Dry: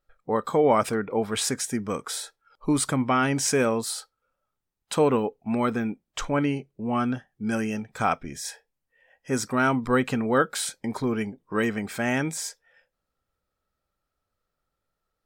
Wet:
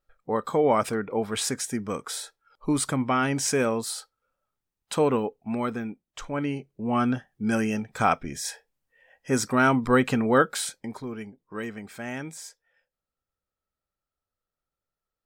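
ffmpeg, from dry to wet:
-af "volume=2.66,afade=t=out:st=5.2:d=1.01:silence=0.473151,afade=t=in:st=6.21:d=0.87:silence=0.316228,afade=t=out:st=10.36:d=0.66:silence=0.281838"

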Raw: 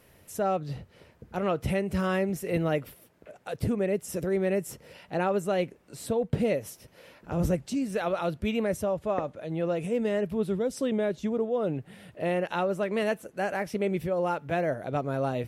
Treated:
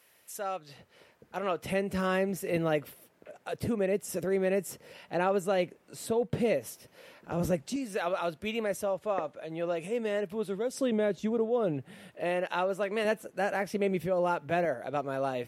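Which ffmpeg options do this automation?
-af "asetnsamples=n=441:p=0,asendcmd='0.79 highpass f 590;1.72 highpass f 220;7.76 highpass f 490;10.74 highpass f 130;12.08 highpass f 420;13.05 highpass f 150;14.65 highpass f 420',highpass=f=1500:p=1"

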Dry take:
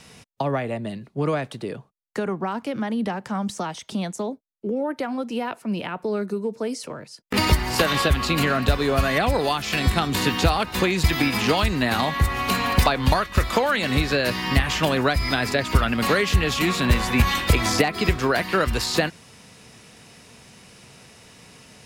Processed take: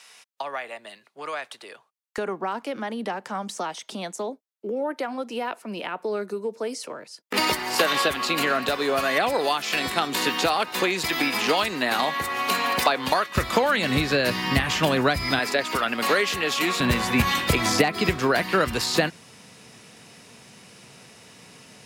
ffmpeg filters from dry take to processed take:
-af "asetnsamples=n=441:p=0,asendcmd='2.18 highpass f 340;13.35 highpass f 110;15.39 highpass f 340;16.8 highpass f 120',highpass=960"

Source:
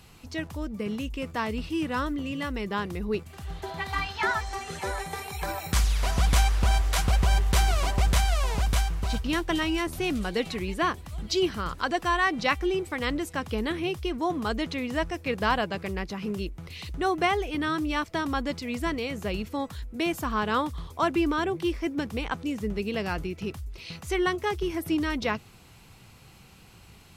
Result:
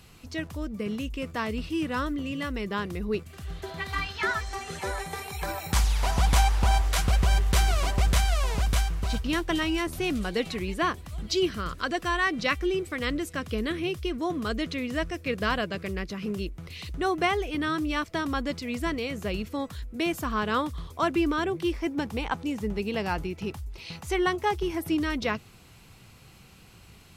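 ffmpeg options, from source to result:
-af "asetnsamples=n=441:p=0,asendcmd='3.22 equalizer g -11.5;4.53 equalizer g -2.5;5.7 equalizer g 8;6.88 equalizer g -3.5;11.34 equalizer g -13.5;16.26 equalizer g -4.5;21.73 equalizer g 6;24.88 equalizer g -3.5',equalizer=f=860:t=o:w=0.31:g=-5"

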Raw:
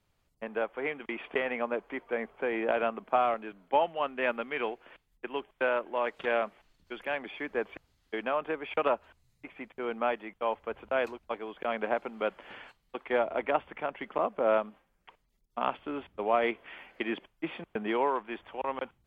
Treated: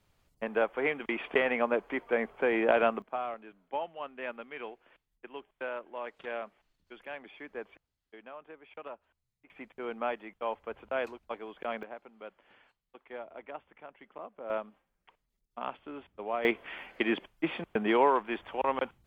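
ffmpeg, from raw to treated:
-af "asetnsamples=n=441:p=0,asendcmd='3.02 volume volume -9dB;7.76 volume volume -16.5dB;9.5 volume volume -3.5dB;11.83 volume volume -15dB;14.5 volume volume -7dB;16.45 volume volume 4dB',volume=1.5"

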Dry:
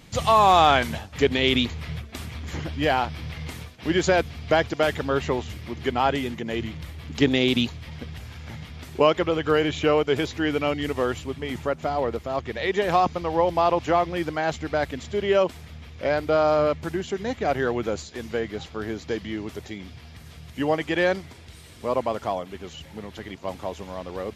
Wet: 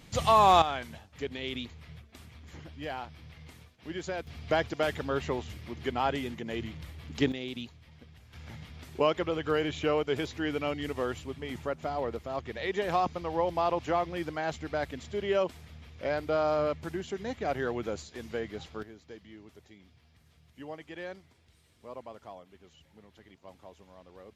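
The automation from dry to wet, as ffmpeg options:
-af "asetnsamples=n=441:p=0,asendcmd='0.62 volume volume -15.5dB;4.27 volume volume -7dB;7.32 volume volume -17dB;8.33 volume volume -7.5dB;18.83 volume volume -19dB',volume=0.631"

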